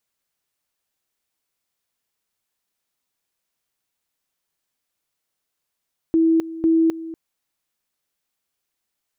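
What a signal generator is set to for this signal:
tone at two levels in turn 326 Hz −13 dBFS, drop 16 dB, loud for 0.26 s, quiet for 0.24 s, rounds 2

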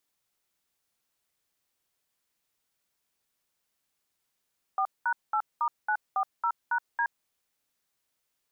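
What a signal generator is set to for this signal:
touch tones "4#8*940#D", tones 72 ms, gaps 204 ms, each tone −26.5 dBFS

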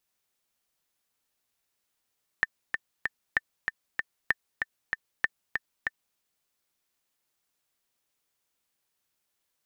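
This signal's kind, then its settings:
click track 192 BPM, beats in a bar 3, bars 4, 1,800 Hz, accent 5 dB −9.5 dBFS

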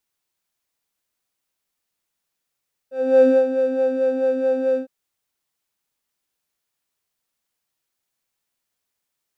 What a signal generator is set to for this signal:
subtractive patch with filter wobble C5, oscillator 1 square, oscillator 2 saw, interval +7 semitones, oscillator 2 level −16 dB, sub −5.5 dB, noise −26.5 dB, filter bandpass, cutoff 360 Hz, Q 2.6, filter envelope 0.5 octaves, attack 362 ms, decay 0.16 s, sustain −9 dB, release 0.10 s, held 1.86 s, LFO 4.6 Hz, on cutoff 0.4 octaves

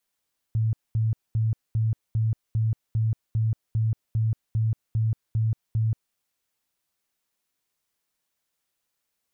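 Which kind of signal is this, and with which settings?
tone bursts 111 Hz, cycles 20, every 0.40 s, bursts 14, −20 dBFS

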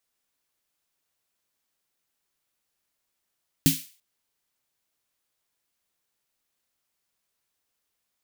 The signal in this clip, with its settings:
synth snare length 0.34 s, tones 160 Hz, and 270 Hz, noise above 2,300 Hz, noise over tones −4 dB, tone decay 0.20 s, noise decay 0.40 s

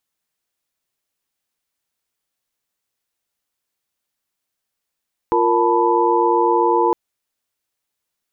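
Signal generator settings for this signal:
held notes F4/A#4/A5/B5 sine, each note −18.5 dBFS 1.61 s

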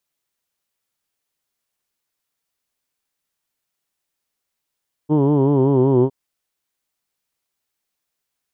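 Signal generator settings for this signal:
vowel from formants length 1.01 s, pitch 147 Hz, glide −2.5 semitones, F1 360 Hz, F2 950 Hz, F3 3,100 Hz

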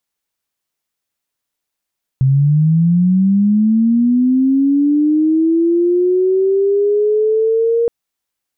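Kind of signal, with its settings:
glide linear 130 Hz → 470 Hz −8.5 dBFS → −11 dBFS 5.67 s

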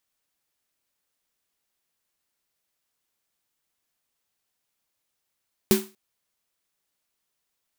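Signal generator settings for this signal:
synth snare length 0.24 s, tones 210 Hz, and 380 Hz, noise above 720 Hz, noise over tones −6.5 dB, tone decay 0.27 s, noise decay 0.31 s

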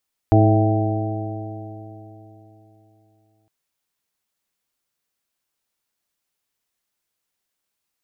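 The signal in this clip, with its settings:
stiff-string partials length 3.16 s, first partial 106 Hz, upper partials −12/−3/−11.5/−19/−6/−8 dB, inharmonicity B 0.0021, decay 3.56 s, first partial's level −12 dB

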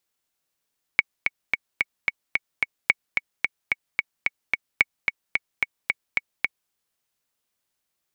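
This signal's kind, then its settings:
click track 220 BPM, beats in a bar 7, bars 3, 2,230 Hz, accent 5 dB −2.5 dBFS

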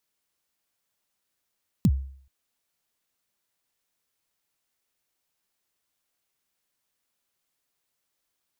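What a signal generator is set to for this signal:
synth kick length 0.43 s, from 240 Hz, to 67 Hz, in 54 ms, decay 0.55 s, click on, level −13 dB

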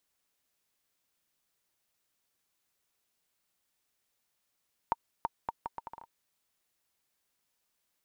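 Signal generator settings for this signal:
bouncing ball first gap 0.33 s, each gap 0.72, 923 Hz, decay 31 ms −15 dBFS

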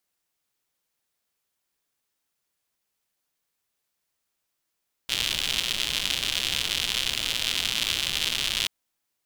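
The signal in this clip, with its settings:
rain-like ticks over hiss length 3.58 s, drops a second 150, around 3,200 Hz, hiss −12 dB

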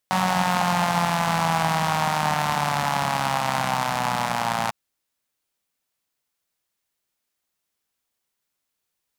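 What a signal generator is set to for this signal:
pulse-train model of a four-cylinder engine, changing speed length 4.60 s, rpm 5,600, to 3,400, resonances 180/820 Hz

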